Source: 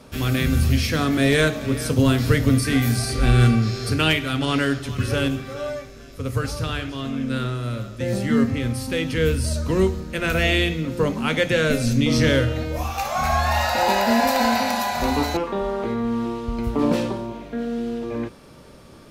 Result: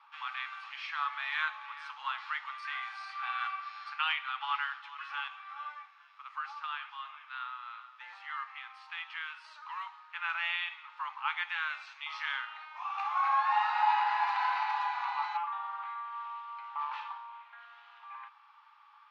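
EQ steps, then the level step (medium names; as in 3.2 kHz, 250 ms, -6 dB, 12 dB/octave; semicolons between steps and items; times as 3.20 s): rippled Chebyshev high-pass 820 Hz, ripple 6 dB; low-pass 1.7 kHz 12 dB/octave; distance through air 71 m; 0.0 dB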